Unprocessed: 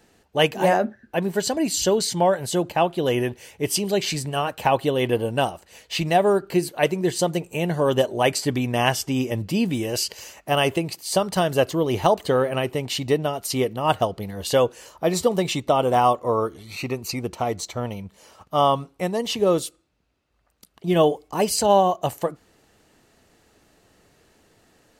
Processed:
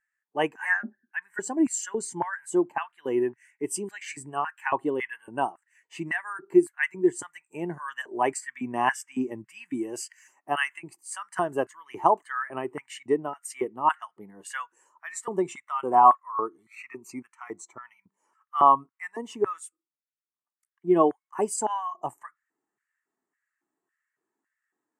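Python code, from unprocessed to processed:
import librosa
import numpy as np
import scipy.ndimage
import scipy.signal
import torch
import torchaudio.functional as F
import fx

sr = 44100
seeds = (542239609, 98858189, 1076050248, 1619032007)

y = fx.low_shelf(x, sr, hz=280.0, db=5.0)
y = fx.filter_lfo_highpass(y, sr, shape='square', hz=1.8, low_hz=380.0, high_hz=1700.0, q=2.6)
y = fx.graphic_eq(y, sr, hz=(125, 250, 500, 1000, 2000, 4000, 8000), db=(11, 5, -11, 12, 6, -9, 12))
y = fx.spectral_expand(y, sr, expansion=1.5)
y = y * librosa.db_to_amplitude(-8.5)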